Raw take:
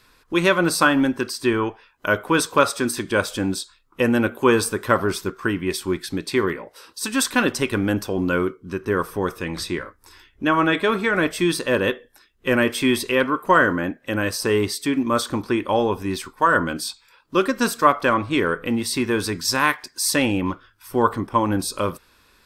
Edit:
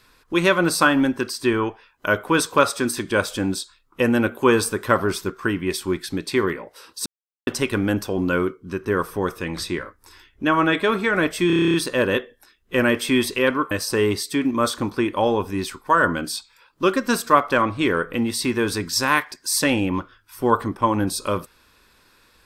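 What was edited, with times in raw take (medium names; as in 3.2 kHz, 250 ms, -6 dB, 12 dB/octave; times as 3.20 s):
7.06–7.47 s: mute
11.47 s: stutter 0.03 s, 10 plays
13.44–14.23 s: delete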